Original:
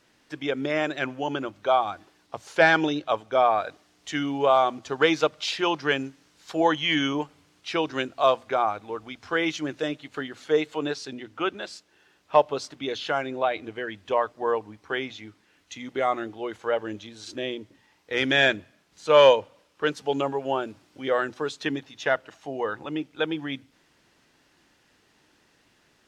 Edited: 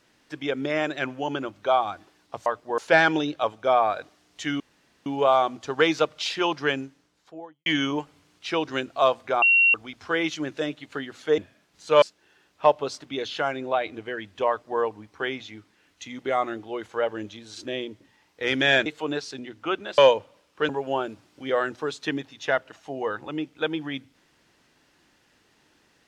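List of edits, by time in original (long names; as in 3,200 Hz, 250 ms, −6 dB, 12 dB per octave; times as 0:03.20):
0:04.28: splice in room tone 0.46 s
0:05.81–0:06.88: fade out and dull
0:08.64–0:08.96: beep over 2,740 Hz −14.5 dBFS
0:10.60–0:11.72: swap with 0:18.56–0:19.20
0:14.18–0:14.50: duplicate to 0:02.46
0:19.91–0:20.27: remove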